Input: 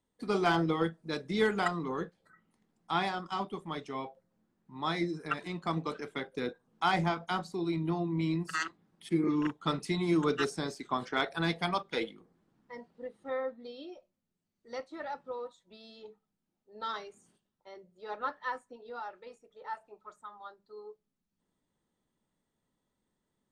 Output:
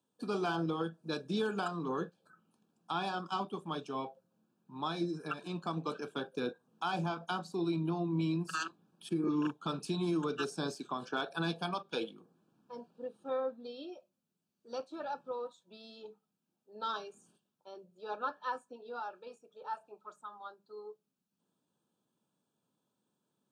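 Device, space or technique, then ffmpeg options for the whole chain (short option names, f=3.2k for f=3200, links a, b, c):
PA system with an anti-feedback notch: -af "highpass=f=120:w=0.5412,highpass=f=120:w=1.3066,asuperstop=centerf=2000:order=8:qfactor=3.4,alimiter=level_in=0.5dB:limit=-24dB:level=0:latency=1:release=230,volume=-0.5dB"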